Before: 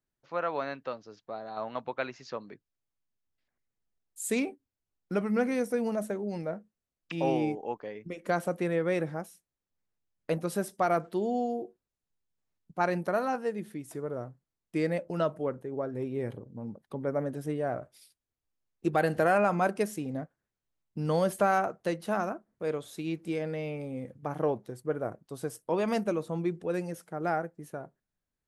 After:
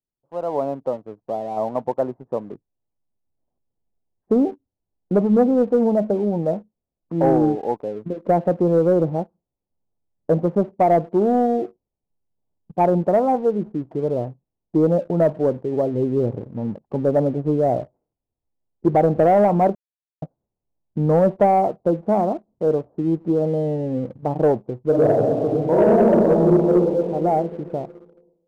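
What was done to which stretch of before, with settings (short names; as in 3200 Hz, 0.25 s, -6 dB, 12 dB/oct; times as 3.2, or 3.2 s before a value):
19.75–20.22 mute
24.84–26.72 reverb throw, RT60 2.3 s, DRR -6 dB
whole clip: steep low-pass 910 Hz 36 dB/oct; AGC gain up to 14 dB; sample leveller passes 1; gain -4.5 dB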